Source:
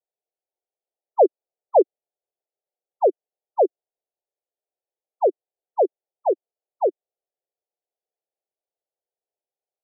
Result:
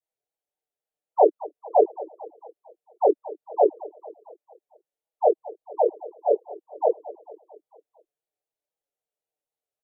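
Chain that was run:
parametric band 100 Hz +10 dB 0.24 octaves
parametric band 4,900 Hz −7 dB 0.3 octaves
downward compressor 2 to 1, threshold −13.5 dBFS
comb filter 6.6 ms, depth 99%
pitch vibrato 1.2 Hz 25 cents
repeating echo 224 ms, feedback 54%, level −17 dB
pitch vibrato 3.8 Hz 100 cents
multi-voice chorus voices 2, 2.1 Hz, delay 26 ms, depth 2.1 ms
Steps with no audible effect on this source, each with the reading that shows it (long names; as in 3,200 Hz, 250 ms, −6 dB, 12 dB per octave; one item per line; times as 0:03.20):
parametric band 100 Hz: nothing at its input below 290 Hz
parametric band 4,900 Hz: nothing at its input above 1,000 Hz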